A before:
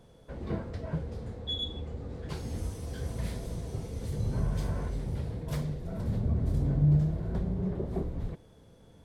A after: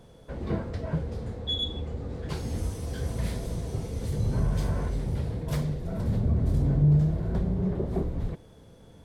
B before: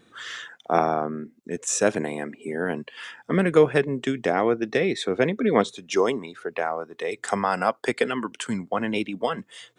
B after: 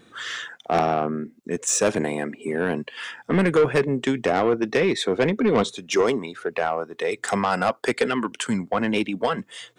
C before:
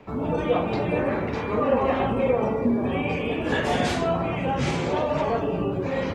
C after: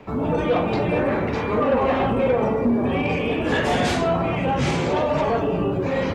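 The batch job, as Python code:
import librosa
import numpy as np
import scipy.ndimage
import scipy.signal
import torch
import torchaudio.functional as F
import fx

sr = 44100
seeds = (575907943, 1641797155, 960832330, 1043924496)

y = 10.0 ** (-17.0 / 20.0) * np.tanh(x / 10.0 ** (-17.0 / 20.0))
y = F.gain(torch.from_numpy(y), 4.5).numpy()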